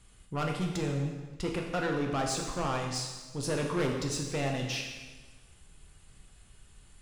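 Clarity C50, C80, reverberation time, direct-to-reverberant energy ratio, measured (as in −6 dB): 4.0 dB, 6.0 dB, 1.3 s, 0.5 dB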